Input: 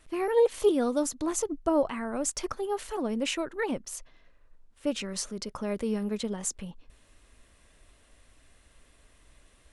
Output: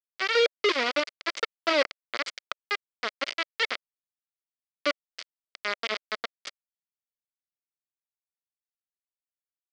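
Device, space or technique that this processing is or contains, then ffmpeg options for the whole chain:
hand-held game console: -af "acrusher=bits=3:mix=0:aa=0.000001,highpass=430,equalizer=f=590:t=q:w=4:g=3,equalizer=f=870:t=q:w=4:g=-9,equalizer=f=1.3k:t=q:w=4:g=4,equalizer=f=2.1k:t=q:w=4:g=8,equalizer=f=3.2k:t=q:w=4:g=4,equalizer=f=4.7k:t=q:w=4:g=7,lowpass=f=5k:w=0.5412,lowpass=f=5k:w=1.3066"

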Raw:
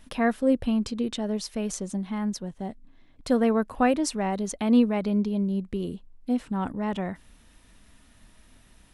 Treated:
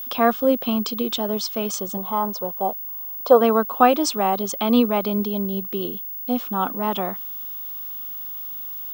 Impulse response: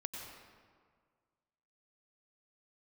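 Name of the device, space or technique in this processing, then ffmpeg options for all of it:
old television with a line whistle: -filter_complex "[0:a]asettb=1/sr,asplit=3[a][b][c];[a]atrim=end=1.974[d];[b]atrim=start=1.97:end=3.41,asetpts=PTS-STARTPTS,afade=t=in:d=0.004:c=qsin,afade=t=out:st=1.436:d=0.004:c=qsin,equalizer=f=125:t=o:w=1:g=4,equalizer=f=250:t=o:w=1:g=-8,equalizer=f=500:t=o:w=1:g=8,equalizer=f=1k:t=o:w=1:g=9,equalizer=f=2k:t=o:w=1:g=-10,equalizer=f=4k:t=o:w=1:g=-3,equalizer=f=8k:t=o:w=1:g=-9[e];[c]atrim=start=3.406[f];[d][e]acrossfade=d=0.004:c1=hsin:c2=qsin[g];[g][f]acrossfade=d=0.004:c1=qsin:c2=hsin,highpass=f=220:w=0.5412,highpass=f=220:w=1.3066,equalizer=f=270:t=q:w=4:g=-4,equalizer=f=770:t=q:w=4:g=4,equalizer=f=1.2k:t=q:w=4:g=9,equalizer=f=1.9k:t=q:w=4:g=-8,equalizer=f=3.3k:t=q:w=4:g=8,equalizer=f=5.2k:t=q:w=4:g=4,lowpass=f=8.1k:w=0.5412,lowpass=f=8.1k:w=1.3066,aeval=exprs='val(0)+0.0178*sin(2*PI*15625*n/s)':c=same,volume=5.5dB"

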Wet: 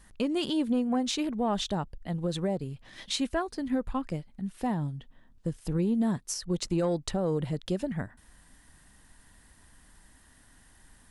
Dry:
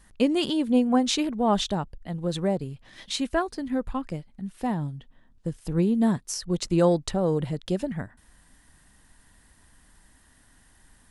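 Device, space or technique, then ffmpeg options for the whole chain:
soft clipper into limiter: -af "asoftclip=type=tanh:threshold=-10.5dB,alimiter=limit=-20dB:level=0:latency=1:release=330"

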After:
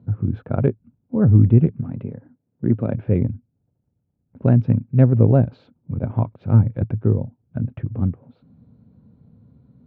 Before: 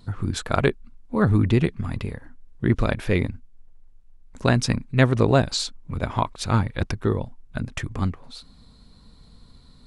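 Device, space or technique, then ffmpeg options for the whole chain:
bass cabinet: -filter_complex "[0:a]asettb=1/sr,asplit=3[a][b][c];[a]atrim=end=1.804[d];[b]atrim=start=1.8:end=2.93,asetpts=PTS-STARTPTS,afade=t=in:d=0.004:c=qsin,afade=t=out:st=1.126:d=0.004:c=qsin,highpass=160[e];[c]atrim=start=2.926[f];[d][e]acrossfade=d=0.004:c1=hsin:c2=qsin[g];[g][f]acrossfade=d=0.004:c1=qsin:c2=hsin,highpass=f=85:w=0.5412,highpass=f=85:w=1.3066,equalizer=f=110:t=q:w=4:g=8,equalizer=f=160:t=q:w=4:g=4,equalizer=f=240:t=q:w=4:g=4,equalizer=f=540:t=q:w=4:g=4,equalizer=f=1.1k:t=q:w=4:g=-7,equalizer=f=1.9k:t=q:w=4:g=-8,lowpass=f=2.3k:w=0.5412,lowpass=f=2.3k:w=1.3066,tiltshelf=f=790:g=7.5,volume=-5.5dB"

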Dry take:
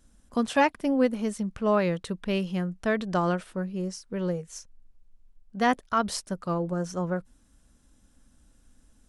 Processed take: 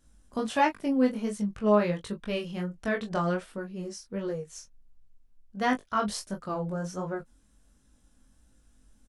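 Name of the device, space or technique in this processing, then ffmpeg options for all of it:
double-tracked vocal: -filter_complex "[0:a]asplit=2[a][b];[b]adelay=19,volume=-8dB[c];[a][c]amix=inputs=2:normalize=0,flanger=delay=19.5:depth=4.6:speed=1.4"

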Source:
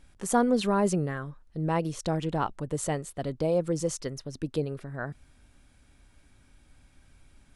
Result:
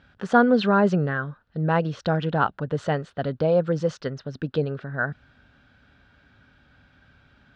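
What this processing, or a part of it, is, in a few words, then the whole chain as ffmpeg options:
guitar cabinet: -af "highpass=92,equalizer=f=330:t=q:w=4:g=-7,equalizer=f=990:t=q:w=4:g=-3,equalizer=f=1.5k:t=q:w=4:g=9,equalizer=f=2.2k:t=q:w=4:g=-6,lowpass=f=4k:w=0.5412,lowpass=f=4k:w=1.3066,volume=6.5dB"

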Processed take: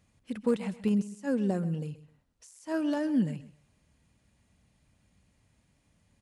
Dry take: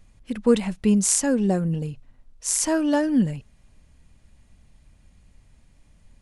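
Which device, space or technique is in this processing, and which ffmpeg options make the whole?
de-esser from a sidechain: -filter_complex "[0:a]asplit=2[a][b];[b]highpass=6k,apad=whole_len=274301[c];[a][c]sidechaincompress=threshold=-44dB:ratio=16:attack=0.73:release=49,highpass=89,aecho=1:1:131|262:0.15|0.0374,volume=-6.5dB"

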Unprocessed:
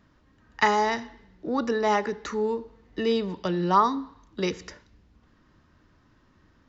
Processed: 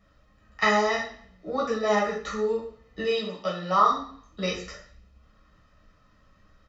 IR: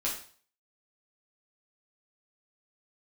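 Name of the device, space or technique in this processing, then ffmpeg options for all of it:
microphone above a desk: -filter_complex "[0:a]asettb=1/sr,asplit=3[a][b][c];[a]atrim=end=3.054[d];[b]atrim=start=3.05:end=3.92,asetpts=PTS-STARTPTS,afade=t=in:d=0.004:c=qsin,afade=t=out:st=0.866:d=0.004:c=qsin,highpass=f=330:p=1[e];[c]atrim=start=3.916[f];[d][e]acrossfade=d=0.004:c1=hsin:c2=qsin[g];[g][f]acrossfade=d=0.004:c1=qsin:c2=hsin,aecho=1:1:1.6:0.65[h];[1:a]atrim=start_sample=2205[i];[h][i]afir=irnorm=-1:irlink=0,volume=-5dB"

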